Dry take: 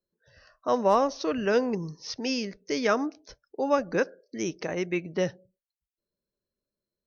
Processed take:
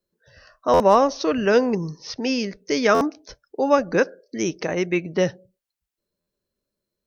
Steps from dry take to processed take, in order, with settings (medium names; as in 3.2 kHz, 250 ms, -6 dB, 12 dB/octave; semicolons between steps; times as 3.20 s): 1.98–2.40 s: treble shelf 6 kHz -10 dB; buffer glitch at 0.73/2.94/6.20 s, samples 512, times 5; trim +6.5 dB